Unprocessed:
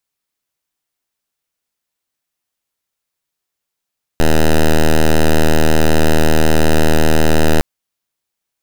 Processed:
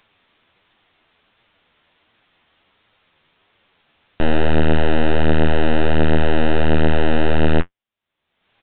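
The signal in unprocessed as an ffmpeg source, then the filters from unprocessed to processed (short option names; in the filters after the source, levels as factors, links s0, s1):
-f lavfi -i "aevalsrc='0.355*(2*lt(mod(78.6*t,1),0.07)-1)':d=3.41:s=44100"
-af "acompressor=mode=upward:threshold=0.0398:ratio=2.5,flanger=delay=8.5:depth=5.1:regen=42:speed=1.4:shape=triangular,aresample=8000,aresample=44100"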